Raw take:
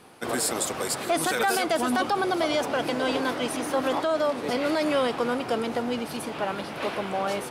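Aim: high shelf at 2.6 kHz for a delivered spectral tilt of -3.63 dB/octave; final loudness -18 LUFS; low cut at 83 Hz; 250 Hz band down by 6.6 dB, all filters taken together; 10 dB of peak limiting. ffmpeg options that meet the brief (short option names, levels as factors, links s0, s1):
-af "highpass=83,equalizer=f=250:t=o:g=-8,highshelf=f=2600:g=-9,volume=6.68,alimiter=limit=0.335:level=0:latency=1"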